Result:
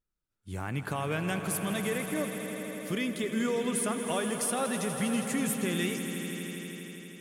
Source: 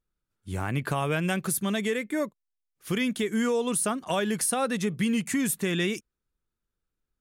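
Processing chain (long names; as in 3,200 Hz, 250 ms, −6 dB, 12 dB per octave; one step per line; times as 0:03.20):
echo that builds up and dies away 81 ms, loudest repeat 5, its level −12.5 dB
level −5 dB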